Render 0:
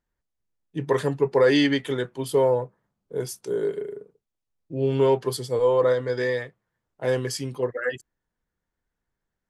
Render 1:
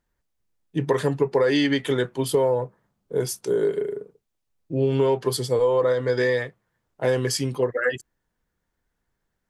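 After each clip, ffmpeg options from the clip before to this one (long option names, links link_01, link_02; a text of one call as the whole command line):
ffmpeg -i in.wav -af "acompressor=threshold=-23dB:ratio=5,volume=5.5dB" out.wav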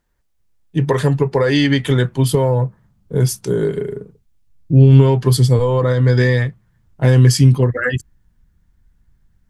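ffmpeg -i in.wav -af "asubboost=boost=9:cutoff=160,volume=6dB" out.wav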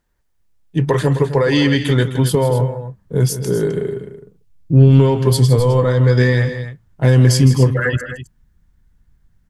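ffmpeg -i in.wav -af "aeval=exprs='0.891*(cos(1*acos(clip(val(0)/0.891,-1,1)))-cos(1*PI/2))+0.0316*(cos(4*acos(clip(val(0)/0.891,-1,1)))-cos(4*PI/2))+0.02*(cos(6*acos(clip(val(0)/0.891,-1,1)))-cos(6*PI/2))':channel_layout=same,aecho=1:1:160.3|259.5:0.251|0.251" out.wav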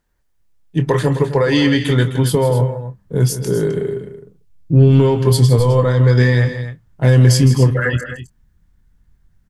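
ffmpeg -i in.wav -filter_complex "[0:a]asplit=2[link_01][link_02];[link_02]adelay=25,volume=-11dB[link_03];[link_01][link_03]amix=inputs=2:normalize=0" out.wav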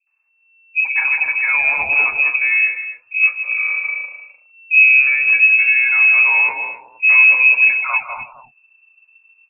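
ffmpeg -i in.wav -filter_complex "[0:a]equalizer=frequency=750:width=2.4:gain=-7,acrossover=split=350|2000[link_01][link_02][link_03];[link_02]adelay=70[link_04];[link_03]adelay=270[link_05];[link_01][link_04][link_05]amix=inputs=3:normalize=0,lowpass=frequency=2300:width_type=q:width=0.5098,lowpass=frequency=2300:width_type=q:width=0.6013,lowpass=frequency=2300:width_type=q:width=0.9,lowpass=frequency=2300:width_type=q:width=2.563,afreqshift=-2700" out.wav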